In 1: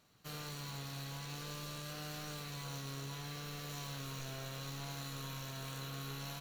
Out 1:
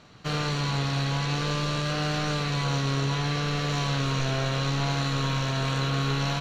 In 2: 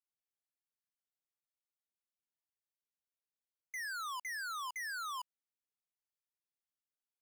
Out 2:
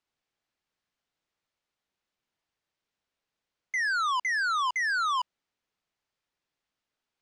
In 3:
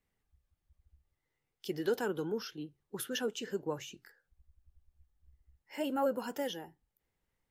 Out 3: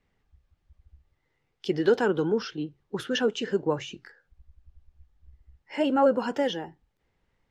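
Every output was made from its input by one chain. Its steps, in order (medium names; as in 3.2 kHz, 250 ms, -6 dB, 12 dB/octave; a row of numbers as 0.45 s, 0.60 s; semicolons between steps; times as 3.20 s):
distance through air 120 m; normalise loudness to -27 LUFS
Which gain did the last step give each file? +18.5 dB, +14.5 dB, +10.5 dB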